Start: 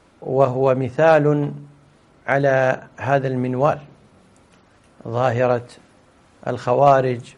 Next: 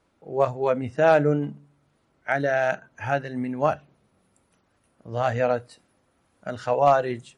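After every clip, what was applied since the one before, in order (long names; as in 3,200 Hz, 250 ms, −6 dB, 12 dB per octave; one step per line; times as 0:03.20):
noise reduction from a noise print of the clip's start 10 dB
level −4 dB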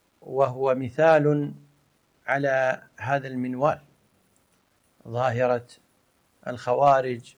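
bit reduction 11 bits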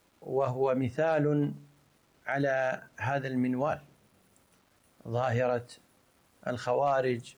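brickwall limiter −18.5 dBFS, peak gain reduction 11.5 dB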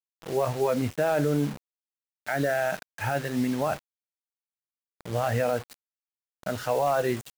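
bit reduction 7 bits
level +2.5 dB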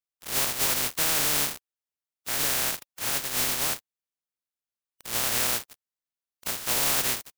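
compressing power law on the bin magnitudes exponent 0.14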